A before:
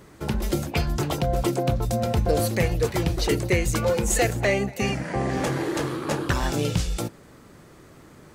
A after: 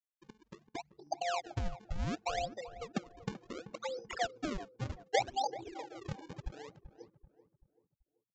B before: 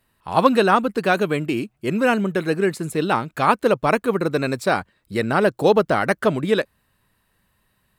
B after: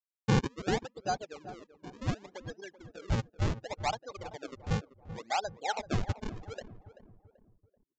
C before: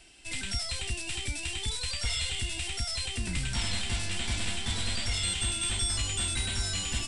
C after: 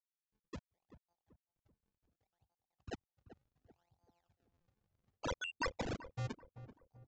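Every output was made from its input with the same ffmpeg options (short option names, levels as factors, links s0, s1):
-filter_complex "[0:a]afftfilt=real='re*gte(hypot(re,im),0.224)':imag='im*gte(hypot(re,im),0.224)':win_size=1024:overlap=0.75,acompressor=threshold=0.0251:ratio=10,alimiter=level_in=1.88:limit=0.0631:level=0:latency=1:release=79,volume=0.531,acontrast=65,highpass=f=790:t=q:w=7.5,acrusher=samples=38:mix=1:aa=0.000001:lfo=1:lforange=60.8:lforate=0.68,asplit=2[s0][s1];[s1]adelay=385,lowpass=f=1100:p=1,volume=0.224,asplit=2[s2][s3];[s3]adelay=385,lowpass=f=1100:p=1,volume=0.44,asplit=2[s4][s5];[s5]adelay=385,lowpass=f=1100:p=1,volume=0.44,asplit=2[s6][s7];[s7]adelay=385,lowpass=f=1100:p=1,volume=0.44[s8];[s2][s4][s6][s8]amix=inputs=4:normalize=0[s9];[s0][s9]amix=inputs=2:normalize=0,aresample=16000,aresample=44100,volume=0.501"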